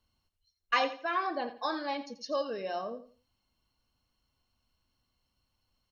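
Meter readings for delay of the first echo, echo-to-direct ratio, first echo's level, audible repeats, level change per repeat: 85 ms, -12.5 dB, -13.0 dB, 2, -11.5 dB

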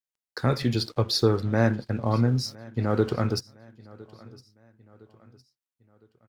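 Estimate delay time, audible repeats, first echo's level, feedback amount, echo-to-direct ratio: 1.01 s, 2, -22.5 dB, 45%, -21.5 dB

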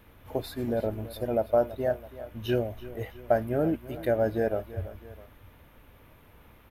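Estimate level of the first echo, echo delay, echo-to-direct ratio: -16.0 dB, 0.33 s, -15.0 dB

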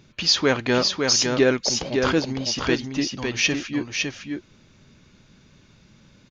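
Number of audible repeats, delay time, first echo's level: 1, 0.557 s, -4.5 dB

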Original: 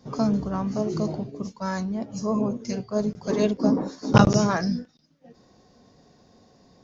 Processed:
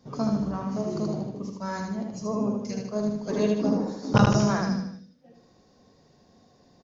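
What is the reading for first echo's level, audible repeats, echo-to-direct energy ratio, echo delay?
-3.5 dB, 5, -2.5 dB, 77 ms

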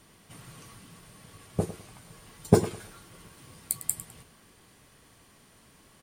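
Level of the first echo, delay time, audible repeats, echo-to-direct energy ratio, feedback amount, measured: -14.0 dB, 0.103 s, 2, -13.5 dB, 25%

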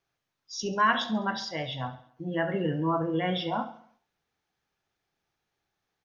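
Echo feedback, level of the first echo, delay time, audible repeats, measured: 51%, -15.5 dB, 68 ms, 4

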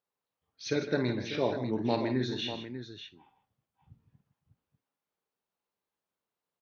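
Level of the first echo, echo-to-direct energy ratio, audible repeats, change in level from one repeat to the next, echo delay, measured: -11.0 dB, -5.0 dB, 4, no steady repeat, 50 ms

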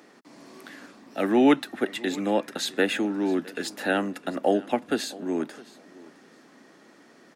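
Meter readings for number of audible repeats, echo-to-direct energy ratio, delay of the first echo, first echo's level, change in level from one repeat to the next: 2, -21.0 dB, 0.662 s, -21.0 dB, -14.0 dB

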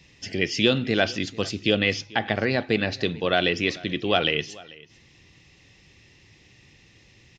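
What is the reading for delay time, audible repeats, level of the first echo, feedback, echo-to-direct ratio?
0.44 s, 1, -22.0 dB, no steady repeat, -22.0 dB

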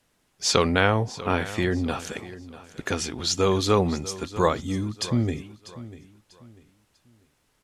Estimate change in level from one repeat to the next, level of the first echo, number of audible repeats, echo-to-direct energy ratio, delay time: -10.0 dB, -16.5 dB, 2, -16.0 dB, 0.644 s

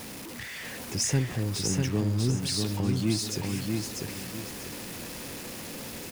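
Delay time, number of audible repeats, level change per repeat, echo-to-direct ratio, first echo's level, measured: 0.645 s, 3, -10.0 dB, -3.0 dB, -3.5 dB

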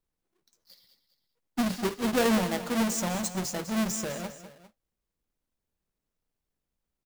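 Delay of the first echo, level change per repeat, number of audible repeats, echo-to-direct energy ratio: 0.201 s, -5.5 dB, 2, -11.5 dB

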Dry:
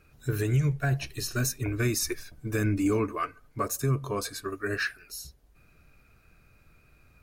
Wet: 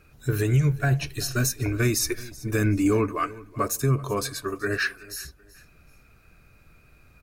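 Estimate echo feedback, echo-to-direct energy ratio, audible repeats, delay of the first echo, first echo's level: 29%, -19.5 dB, 2, 0.38 s, -20.0 dB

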